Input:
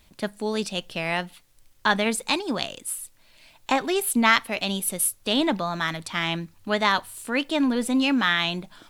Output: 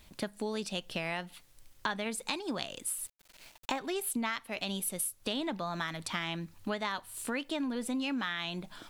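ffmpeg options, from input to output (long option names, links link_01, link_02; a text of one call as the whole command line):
ffmpeg -i in.wav -filter_complex "[0:a]acompressor=threshold=-32dB:ratio=6,asettb=1/sr,asplit=3[link_01][link_02][link_03];[link_01]atrim=end=2.984[link_04];[link_02]atrim=start=2.98:end=3.79,asetpts=PTS-STARTPTS,afade=type=in:duration=0.004:curve=qsin,afade=type=out:start_time=0.806:duration=0.004:curve=qsin,aeval=exprs='val(0)*gte(abs(val(0)),0.00316)':channel_layout=same[link_05];[link_03]atrim=start=3.786[link_06];[link_04][link_05]acrossfade=duration=0.004:curve1=hsin:curve2=qsin[link_07];[link_07][link_06]acrossfade=duration=0.004:curve1=qsin:curve2=hsin" out.wav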